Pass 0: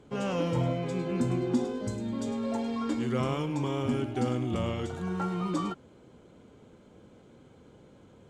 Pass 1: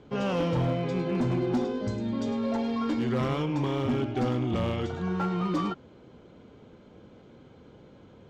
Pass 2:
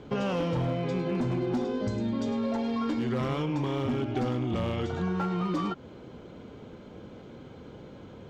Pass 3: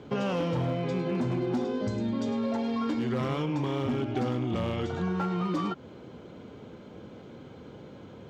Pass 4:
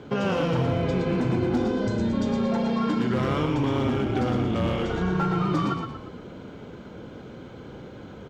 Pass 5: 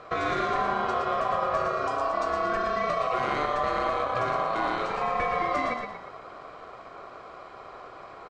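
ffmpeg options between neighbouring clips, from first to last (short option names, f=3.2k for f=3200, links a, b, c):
-af "lowpass=f=5.6k:w=0.5412,lowpass=f=5.6k:w=1.3066,asoftclip=type=hard:threshold=-25dB,volume=3dB"
-af "acompressor=threshold=-33dB:ratio=5,volume=6dB"
-af "highpass=73"
-filter_complex "[0:a]equalizer=f=1.5k:t=o:w=0.26:g=4.5,asplit=2[a][b];[b]asplit=5[c][d][e][f][g];[c]adelay=117,afreqshift=-30,volume=-5dB[h];[d]adelay=234,afreqshift=-60,volume=-12.1dB[i];[e]adelay=351,afreqshift=-90,volume=-19.3dB[j];[f]adelay=468,afreqshift=-120,volume=-26.4dB[k];[g]adelay=585,afreqshift=-150,volume=-33.5dB[l];[h][i][j][k][l]amix=inputs=5:normalize=0[m];[a][m]amix=inputs=2:normalize=0,volume=3.5dB"
-af "aresample=22050,aresample=44100,aeval=exprs='val(0)*sin(2*PI*890*n/s)':c=same"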